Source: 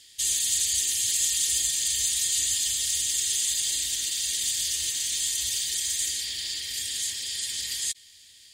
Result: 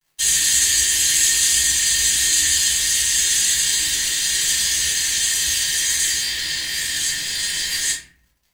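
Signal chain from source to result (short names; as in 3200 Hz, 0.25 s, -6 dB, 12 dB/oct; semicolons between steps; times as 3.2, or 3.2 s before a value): fifteen-band EQ 100 Hz -11 dB, 630 Hz -5 dB, 1600 Hz +11 dB; crossover distortion -43.5 dBFS; reverb RT60 0.50 s, pre-delay 3 ms, DRR -7.5 dB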